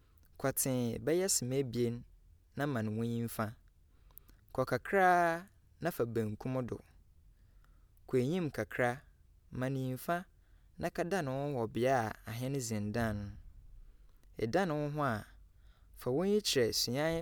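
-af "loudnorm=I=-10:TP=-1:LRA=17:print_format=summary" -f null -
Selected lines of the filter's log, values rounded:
Input Integrated:    -34.6 LUFS
Input True Peak:     -16.4 dBTP
Input LRA:             4.2 LU
Input Threshold:     -45.8 LUFS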